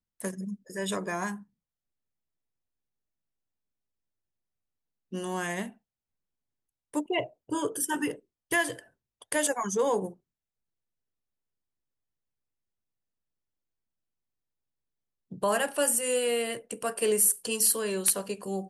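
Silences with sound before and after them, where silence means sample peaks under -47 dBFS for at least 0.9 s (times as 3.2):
1.43–5.12
5.72–6.94
10.13–15.31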